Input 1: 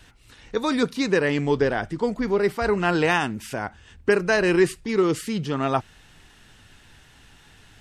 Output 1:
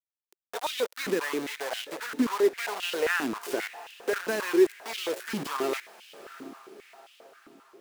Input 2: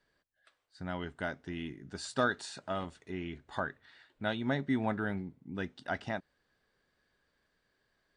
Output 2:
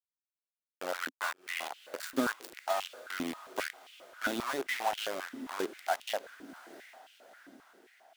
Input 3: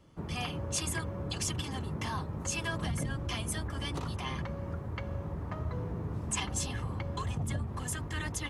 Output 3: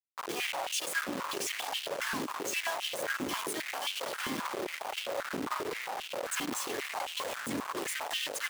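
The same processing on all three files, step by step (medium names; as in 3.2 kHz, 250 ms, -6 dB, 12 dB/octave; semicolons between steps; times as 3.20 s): compression 2.5:1, threshold -34 dBFS; word length cut 6-bit, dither none; echo that smears into a reverb 712 ms, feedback 53%, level -16 dB; step-sequenced high-pass 7.5 Hz 270–2900 Hz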